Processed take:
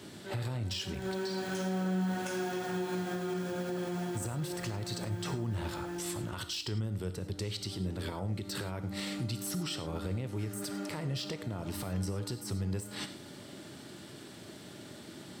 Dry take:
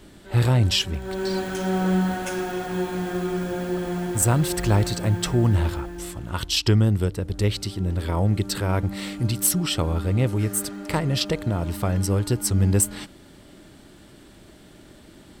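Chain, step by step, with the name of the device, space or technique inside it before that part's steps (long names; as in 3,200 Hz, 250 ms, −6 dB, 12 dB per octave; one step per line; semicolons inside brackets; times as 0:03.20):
broadcast voice chain (high-pass filter 100 Hz 24 dB per octave; de-essing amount 55%; downward compressor 4 to 1, threshold −33 dBFS, peak gain reduction 15.5 dB; parametric band 5,100 Hz +4 dB 1.1 octaves; brickwall limiter −27.5 dBFS, peak gain reduction 9.5 dB)
reverb whose tail is shaped and stops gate 130 ms flat, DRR 9 dB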